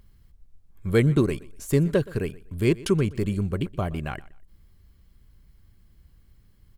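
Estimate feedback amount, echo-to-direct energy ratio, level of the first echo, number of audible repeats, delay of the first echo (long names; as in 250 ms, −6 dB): 26%, −20.5 dB, −21.0 dB, 2, 122 ms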